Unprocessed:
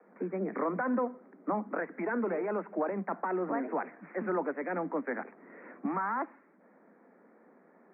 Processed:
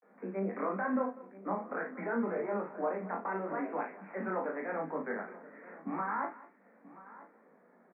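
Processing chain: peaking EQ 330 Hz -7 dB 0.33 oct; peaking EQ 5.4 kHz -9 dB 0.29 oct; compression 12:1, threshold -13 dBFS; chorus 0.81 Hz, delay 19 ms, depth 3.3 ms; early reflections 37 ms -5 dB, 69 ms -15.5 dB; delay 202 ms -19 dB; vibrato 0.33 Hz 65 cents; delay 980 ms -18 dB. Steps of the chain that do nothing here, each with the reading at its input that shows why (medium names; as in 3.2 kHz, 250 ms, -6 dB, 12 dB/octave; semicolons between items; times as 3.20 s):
peaking EQ 5.4 kHz: input has nothing above 2.4 kHz; compression, threshold -13 dBFS: peak at its input -20.0 dBFS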